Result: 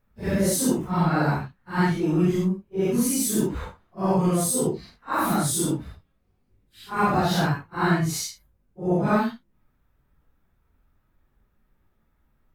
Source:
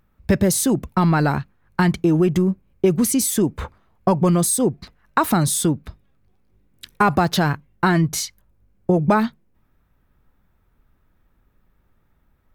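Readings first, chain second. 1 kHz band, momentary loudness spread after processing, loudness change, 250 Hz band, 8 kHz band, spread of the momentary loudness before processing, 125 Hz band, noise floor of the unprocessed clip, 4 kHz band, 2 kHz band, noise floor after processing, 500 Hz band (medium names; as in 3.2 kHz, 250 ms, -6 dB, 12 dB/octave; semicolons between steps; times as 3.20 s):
-4.0 dB, 9 LU, -4.5 dB, -4.5 dB, -4.0 dB, 10 LU, -4.5 dB, -63 dBFS, -4.0 dB, -4.0 dB, -69 dBFS, -4.5 dB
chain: phase randomisation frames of 200 ms; trim -4 dB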